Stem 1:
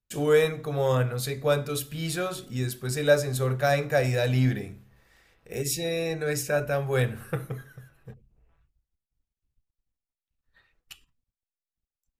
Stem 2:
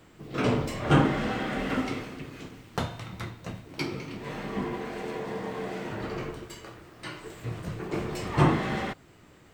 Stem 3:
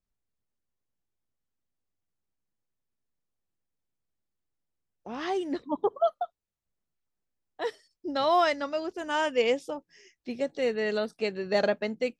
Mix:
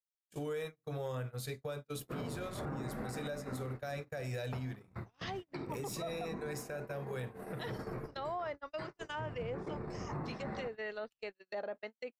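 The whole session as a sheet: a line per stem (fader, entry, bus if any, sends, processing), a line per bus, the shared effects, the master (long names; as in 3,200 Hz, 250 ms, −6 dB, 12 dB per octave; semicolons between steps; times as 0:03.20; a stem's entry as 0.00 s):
−3.5 dB, 0.20 s, bus A, no send, de-essing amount 50%
−1.5 dB, 1.75 s, bus A, no send, noise gate −45 dBFS, range −13 dB; moving average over 14 samples; parametric band 320 Hz −4 dB 0.23 octaves
−5.5 dB, 0.00 s, no bus, no send, treble cut that deepens with the level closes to 900 Hz, closed at −23 dBFS; high-pass filter 150 Hz 6 dB per octave; spectral tilt +4.5 dB per octave
bus A: 0.0 dB, downward compressor 4 to 1, threshold −36 dBFS, peak gain reduction 15.5 dB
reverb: not used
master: noise gate −39 dBFS, range −41 dB; brickwall limiter −31.5 dBFS, peak gain reduction 9.5 dB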